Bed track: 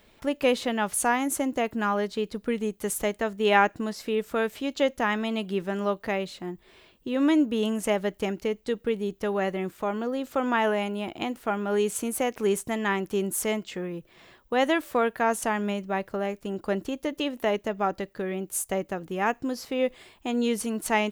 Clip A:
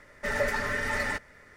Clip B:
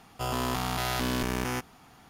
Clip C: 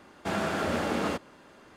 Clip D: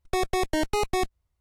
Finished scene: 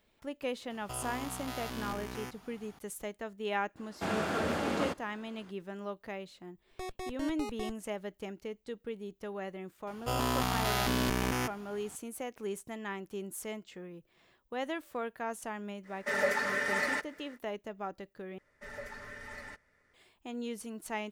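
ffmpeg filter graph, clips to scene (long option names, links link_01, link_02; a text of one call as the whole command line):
ffmpeg -i bed.wav -i cue0.wav -i cue1.wav -i cue2.wav -i cue3.wav -filter_complex "[2:a]asplit=2[link_01][link_02];[1:a]asplit=2[link_03][link_04];[0:a]volume=-13dB[link_05];[link_01]acompressor=threshold=-32dB:ratio=4:attack=0.1:release=122:knee=1:detection=peak[link_06];[link_03]highpass=250[link_07];[link_05]asplit=2[link_08][link_09];[link_08]atrim=end=18.384[link_10];[link_04]atrim=end=1.56,asetpts=PTS-STARTPTS,volume=-16.5dB[link_11];[link_09]atrim=start=19.936[link_12];[link_06]atrim=end=2.09,asetpts=PTS-STARTPTS,volume=-3dB,afade=type=in:duration=0.004:curve=hsin,afade=type=out:start_time=2.086:duration=0.004:curve=hsin,adelay=700[link_13];[3:a]atrim=end=1.76,asetpts=PTS-STARTPTS,volume=-3.5dB,afade=type=in:duration=0.02,afade=type=out:start_time=1.74:duration=0.02,adelay=3760[link_14];[4:a]atrim=end=1.4,asetpts=PTS-STARTPTS,volume=-15.5dB,afade=type=in:duration=0.004:curve=hsin,afade=type=out:start_time=1.396:duration=0.004:curve=hsin,adelay=293706S[link_15];[link_02]atrim=end=2.09,asetpts=PTS-STARTPTS,volume=-1dB,afade=type=in:duration=0.004:curve=hsin,afade=type=out:start_time=2.086:duration=0.004:curve=hsin,adelay=9870[link_16];[link_07]atrim=end=1.56,asetpts=PTS-STARTPTS,volume=-1.5dB,afade=type=in:duration=0.05,afade=type=out:start_time=1.51:duration=0.05,adelay=15830[link_17];[link_10][link_11]acrossfade=duration=0.004:curve1=hsin:curve2=hsin[link_18];[link_18][link_12]acrossfade=duration=0.004:curve1=hsin:curve2=hsin[link_19];[link_19][link_13][link_14][link_15][link_16][link_17]amix=inputs=6:normalize=0" out.wav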